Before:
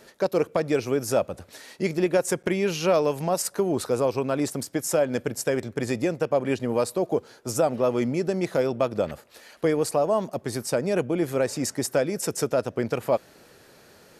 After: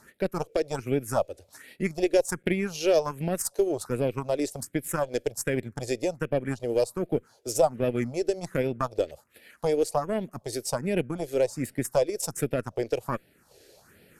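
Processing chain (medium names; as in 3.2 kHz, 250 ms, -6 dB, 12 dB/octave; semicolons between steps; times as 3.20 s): Chebyshev shaper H 2 -19 dB, 3 -21 dB, 6 -39 dB, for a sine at -10 dBFS; phase shifter stages 4, 1.3 Hz, lowest notch 170–1100 Hz; transient shaper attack 0 dB, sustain -6 dB; trim +2 dB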